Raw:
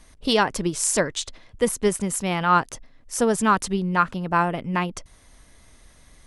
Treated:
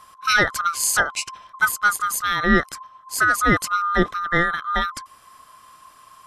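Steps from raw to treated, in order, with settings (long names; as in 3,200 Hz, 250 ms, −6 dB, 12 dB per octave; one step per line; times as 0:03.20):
neighbouring bands swapped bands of 1,000 Hz
level +2 dB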